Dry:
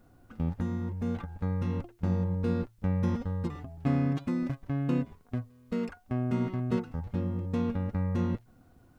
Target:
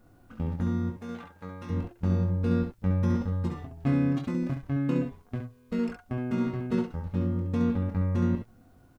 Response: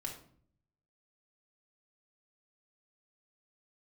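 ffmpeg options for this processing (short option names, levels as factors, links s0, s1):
-filter_complex "[0:a]asettb=1/sr,asplit=3[s0][s1][s2];[s0]atrim=end=0.904[s3];[s1]atrim=start=0.9:end=1.7,asetpts=PTS-STARTPTS,afade=t=in:d=0.004:c=qsin,afade=t=out:st=0.796:d=0.004:c=qsin,highpass=f=690:p=1[s4];[s2]atrim=start=1.696[s5];[s3][s4]acrossfade=d=0.004:c1=hsin:c2=qsin[s6];[s6][s5]acrossfade=d=0.004:c1=qsin:c2=hsin,asplit=2[s7][s8];[s8]aecho=0:1:22|68:0.501|0.501[s9];[s7][s9]amix=inputs=2:normalize=0"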